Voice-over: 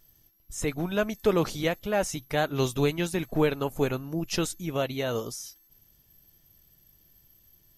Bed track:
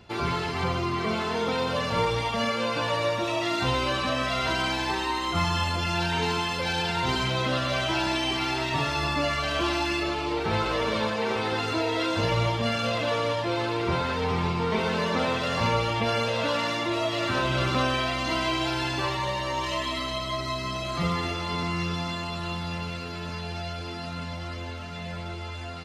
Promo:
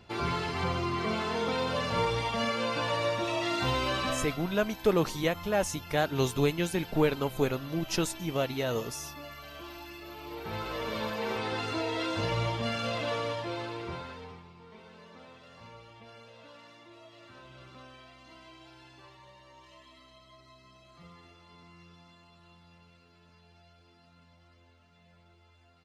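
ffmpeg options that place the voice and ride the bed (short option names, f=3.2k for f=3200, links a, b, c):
-filter_complex "[0:a]adelay=3600,volume=-1.5dB[a];[1:a]volume=9.5dB,afade=t=out:st=4.08:d=0.31:silence=0.177828,afade=t=in:st=10.01:d=1.28:silence=0.223872,afade=t=out:st=13.12:d=1.32:silence=0.0944061[b];[a][b]amix=inputs=2:normalize=0"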